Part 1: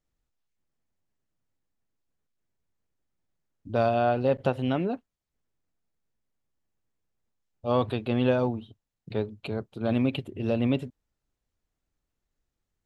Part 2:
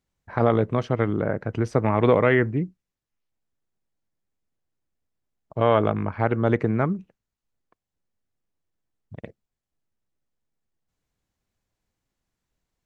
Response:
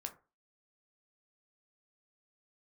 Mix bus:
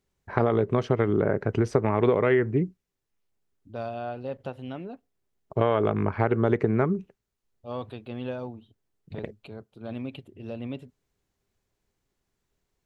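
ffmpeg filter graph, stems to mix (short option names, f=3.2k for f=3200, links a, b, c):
-filter_complex "[0:a]volume=-10.5dB,asplit=2[a][b];[b]volume=-20dB[c];[1:a]equalizer=f=400:w=6.7:g=10,volume=2dB[d];[2:a]atrim=start_sample=2205[e];[c][e]afir=irnorm=-1:irlink=0[f];[a][d][f]amix=inputs=3:normalize=0,acompressor=threshold=-18dB:ratio=6"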